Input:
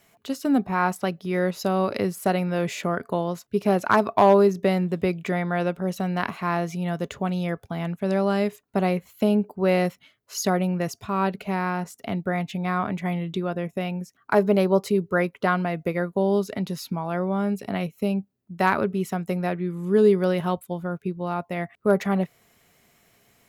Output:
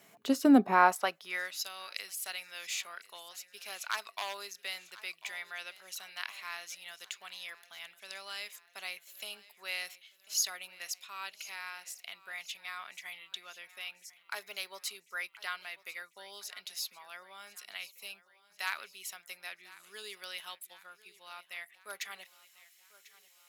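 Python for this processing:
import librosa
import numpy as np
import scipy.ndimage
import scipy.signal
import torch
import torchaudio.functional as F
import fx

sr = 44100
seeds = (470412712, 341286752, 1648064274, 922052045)

y = fx.echo_feedback(x, sr, ms=1045, feedback_pct=54, wet_db=-19.0)
y = fx.filter_sweep_highpass(y, sr, from_hz=180.0, to_hz=3100.0, start_s=0.43, end_s=1.59, q=0.87)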